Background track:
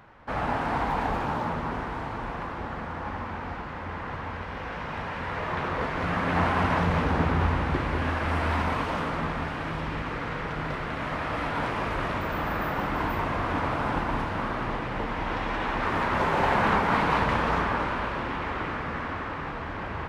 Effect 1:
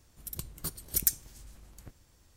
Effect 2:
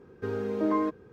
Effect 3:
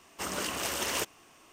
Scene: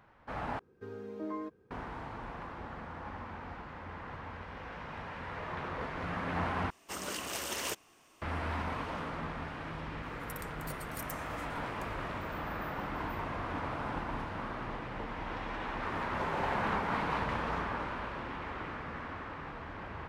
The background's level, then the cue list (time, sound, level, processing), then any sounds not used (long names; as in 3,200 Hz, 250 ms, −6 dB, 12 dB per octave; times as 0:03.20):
background track −9.5 dB
0:00.59: overwrite with 2 −12.5 dB
0:06.70: overwrite with 3 −5 dB
0:10.03: mix in 1 −4 dB + downward compressor, threshold −37 dBFS